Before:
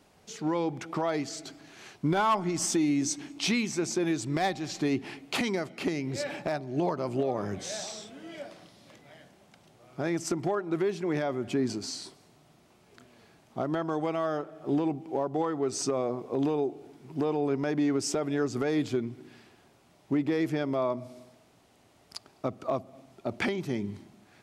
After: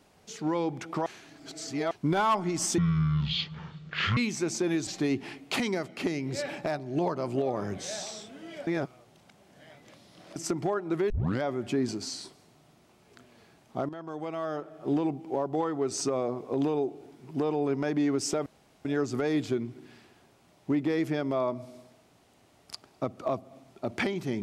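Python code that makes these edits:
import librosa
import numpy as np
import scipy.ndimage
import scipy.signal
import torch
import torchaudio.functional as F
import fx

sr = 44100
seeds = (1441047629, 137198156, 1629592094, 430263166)

y = fx.edit(x, sr, fx.reverse_span(start_s=1.06, length_s=0.85),
    fx.speed_span(start_s=2.78, length_s=0.75, speed=0.54),
    fx.cut(start_s=4.23, length_s=0.45),
    fx.reverse_span(start_s=8.48, length_s=1.69),
    fx.tape_start(start_s=10.91, length_s=0.32),
    fx.fade_in_from(start_s=13.7, length_s=0.95, floor_db=-13.0),
    fx.insert_room_tone(at_s=18.27, length_s=0.39), tone=tone)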